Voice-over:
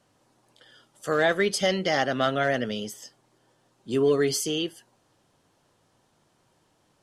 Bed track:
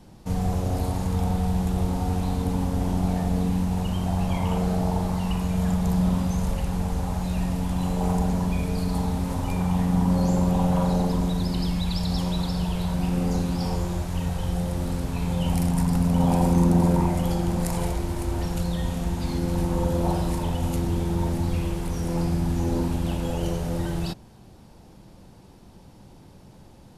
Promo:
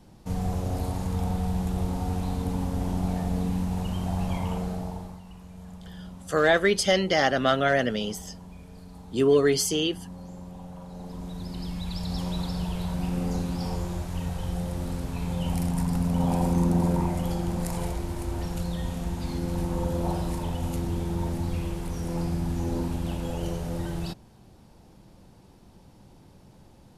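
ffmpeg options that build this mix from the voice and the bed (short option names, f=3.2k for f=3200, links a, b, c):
-filter_complex "[0:a]adelay=5250,volume=2dB[a];[1:a]volume=12.5dB,afade=t=out:st=4.33:d=0.9:silence=0.149624,afade=t=in:st=10.89:d=1.48:silence=0.158489[b];[a][b]amix=inputs=2:normalize=0"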